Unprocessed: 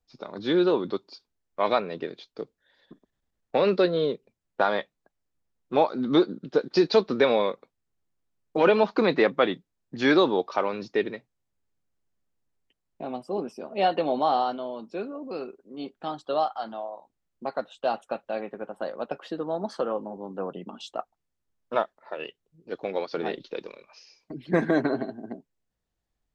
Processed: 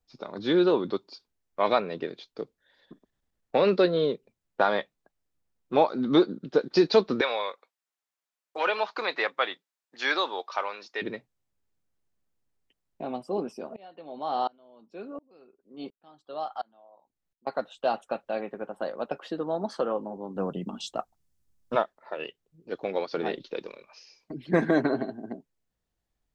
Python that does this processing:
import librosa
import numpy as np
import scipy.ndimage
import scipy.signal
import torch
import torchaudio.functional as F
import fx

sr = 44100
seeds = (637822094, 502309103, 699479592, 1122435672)

y = fx.highpass(x, sr, hz=860.0, slope=12, at=(7.21, 11.02))
y = fx.tremolo_decay(y, sr, direction='swelling', hz=1.4, depth_db=30, at=(13.76, 17.47))
y = fx.bass_treble(y, sr, bass_db=10, treble_db=8, at=(20.36, 21.76))